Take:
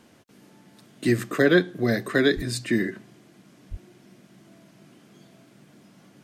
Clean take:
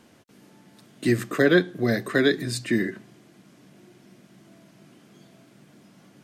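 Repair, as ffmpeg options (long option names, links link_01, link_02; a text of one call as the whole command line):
ffmpeg -i in.wav -filter_complex "[0:a]asplit=3[link_01][link_02][link_03];[link_01]afade=type=out:start_time=2.35:duration=0.02[link_04];[link_02]highpass=frequency=140:width=0.5412,highpass=frequency=140:width=1.3066,afade=type=in:start_time=2.35:duration=0.02,afade=type=out:start_time=2.47:duration=0.02[link_05];[link_03]afade=type=in:start_time=2.47:duration=0.02[link_06];[link_04][link_05][link_06]amix=inputs=3:normalize=0,asplit=3[link_07][link_08][link_09];[link_07]afade=type=out:start_time=3.7:duration=0.02[link_10];[link_08]highpass=frequency=140:width=0.5412,highpass=frequency=140:width=1.3066,afade=type=in:start_time=3.7:duration=0.02,afade=type=out:start_time=3.82:duration=0.02[link_11];[link_09]afade=type=in:start_time=3.82:duration=0.02[link_12];[link_10][link_11][link_12]amix=inputs=3:normalize=0" out.wav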